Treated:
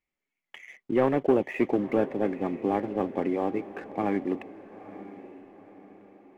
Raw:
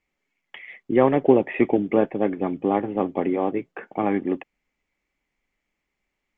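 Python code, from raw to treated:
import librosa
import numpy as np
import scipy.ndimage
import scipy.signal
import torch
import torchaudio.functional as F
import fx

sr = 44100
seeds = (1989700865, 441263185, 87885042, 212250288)

y = fx.leveller(x, sr, passes=1)
y = fx.echo_diffused(y, sr, ms=918, feedback_pct=44, wet_db=-15)
y = F.gain(torch.from_numpy(y), -8.0).numpy()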